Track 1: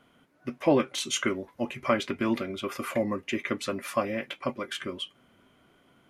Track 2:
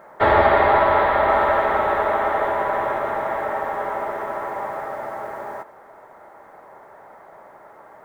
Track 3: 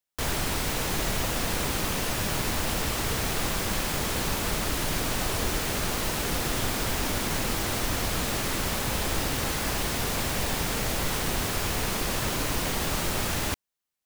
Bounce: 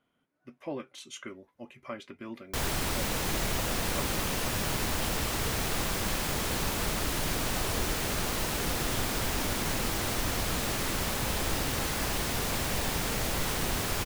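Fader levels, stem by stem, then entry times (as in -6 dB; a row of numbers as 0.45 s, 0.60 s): -14.5 dB, mute, -2.5 dB; 0.00 s, mute, 2.35 s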